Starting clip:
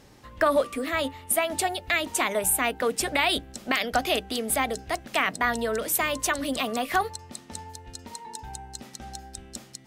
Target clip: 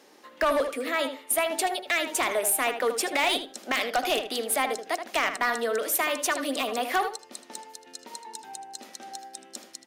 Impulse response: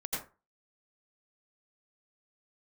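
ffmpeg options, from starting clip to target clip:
-filter_complex "[0:a]highpass=frequency=280:width=0.5412,highpass=frequency=280:width=1.3066,bandreject=frequency=7900:width=20,asoftclip=type=hard:threshold=-19dB,asplit=2[link_01][link_02];[link_02]adelay=78,lowpass=frequency=3200:poles=1,volume=-8dB,asplit=2[link_03][link_04];[link_04]adelay=78,lowpass=frequency=3200:poles=1,volume=0.18,asplit=2[link_05][link_06];[link_06]adelay=78,lowpass=frequency=3200:poles=1,volume=0.18[link_07];[link_03][link_05][link_07]amix=inputs=3:normalize=0[link_08];[link_01][link_08]amix=inputs=2:normalize=0"

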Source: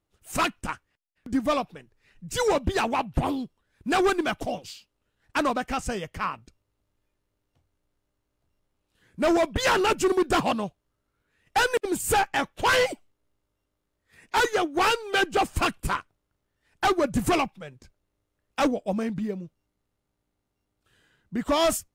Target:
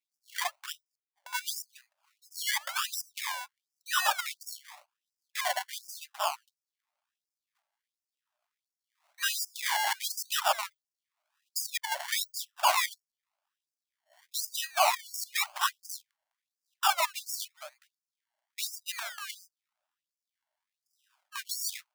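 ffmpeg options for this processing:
ffmpeg -i in.wav -af "acrusher=samples=28:mix=1:aa=0.000001:lfo=1:lforange=16.8:lforate=0.94,afreqshift=14,afftfilt=real='re*gte(b*sr/1024,550*pow(4800/550,0.5+0.5*sin(2*PI*1.4*pts/sr)))':imag='im*gte(b*sr/1024,550*pow(4800/550,0.5+0.5*sin(2*PI*1.4*pts/sr)))':win_size=1024:overlap=0.75" out.wav

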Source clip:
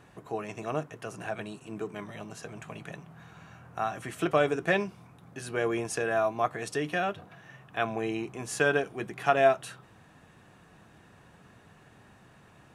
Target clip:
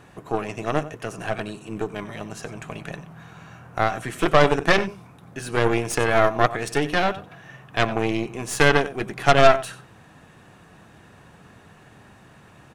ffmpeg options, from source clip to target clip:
ffmpeg -i in.wav -filter_complex "[0:a]asplit=2[link_01][link_02];[link_02]adelay=93.29,volume=-14dB,highshelf=frequency=4000:gain=-2.1[link_03];[link_01][link_03]amix=inputs=2:normalize=0,aeval=exprs='0.335*(cos(1*acos(clip(val(0)/0.335,-1,1)))-cos(1*PI/2))+0.075*(cos(6*acos(clip(val(0)/0.335,-1,1)))-cos(6*PI/2))':channel_layout=same,volume=6.5dB" out.wav

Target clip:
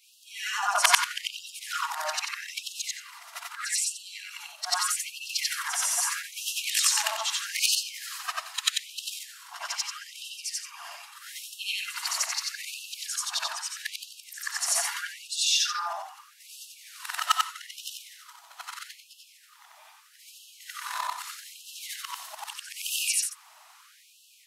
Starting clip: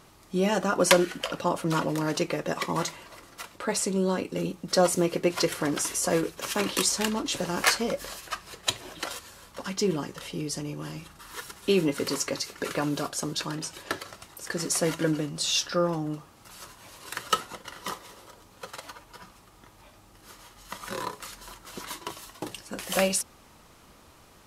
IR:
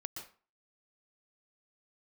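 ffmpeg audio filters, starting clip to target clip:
-af "afftfilt=real='re':imag='-im':win_size=8192:overlap=0.75,afftfilt=real='re*gte(b*sr/1024,600*pow(2600/600,0.5+0.5*sin(2*PI*0.79*pts/sr)))':imag='im*gte(b*sr/1024,600*pow(2600/600,0.5+0.5*sin(2*PI*0.79*pts/sr)))':win_size=1024:overlap=0.75,volume=7.5dB"

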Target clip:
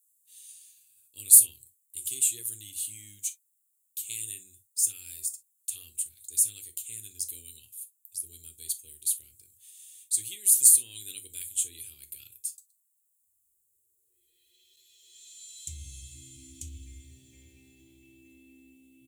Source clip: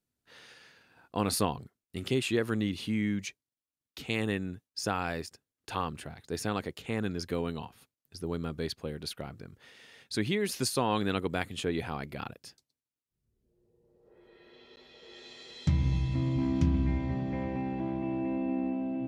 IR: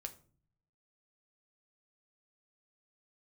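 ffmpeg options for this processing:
-filter_complex "[0:a]aexciter=amount=7.9:drive=8.8:freq=3600,firequalizer=gain_entry='entry(100,0);entry(150,-19);entry(350,-7);entry(680,-28);entry(990,-30);entry(2400,6);entry(5000,-11);entry(7500,14)':delay=0.05:min_phase=1[link_01];[1:a]atrim=start_sample=2205,atrim=end_sample=3087[link_02];[link_01][link_02]afir=irnorm=-1:irlink=0,volume=-13.5dB"

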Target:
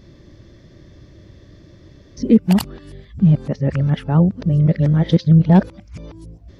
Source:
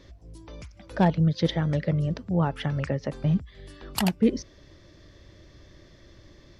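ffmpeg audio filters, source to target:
ffmpeg -i in.wav -af "areverse,equalizer=frequency=160:width_type=o:width=2.9:gain=10,volume=1dB" out.wav

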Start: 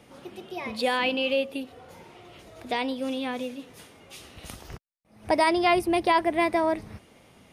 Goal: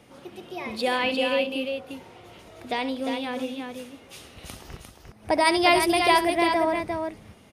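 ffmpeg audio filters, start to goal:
ffmpeg -i in.wav -filter_complex "[0:a]asplit=3[link_01][link_02][link_03];[link_01]afade=type=out:start_time=5.44:duration=0.02[link_04];[link_02]highshelf=frequency=2700:gain=10.5,afade=type=in:start_time=5.44:duration=0.02,afade=type=out:start_time=6.27:duration=0.02[link_05];[link_03]afade=type=in:start_time=6.27:duration=0.02[link_06];[link_04][link_05][link_06]amix=inputs=3:normalize=0,asplit=2[link_07][link_08];[link_08]aecho=0:1:68|351:0.224|0.531[link_09];[link_07][link_09]amix=inputs=2:normalize=0" out.wav

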